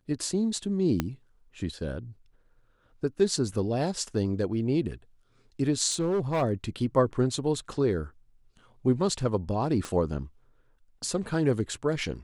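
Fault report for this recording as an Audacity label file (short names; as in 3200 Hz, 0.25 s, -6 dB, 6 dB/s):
1.000000	1.000000	pop -12 dBFS
5.900000	6.430000	clipped -22.5 dBFS
9.850000	9.850000	pop -20 dBFS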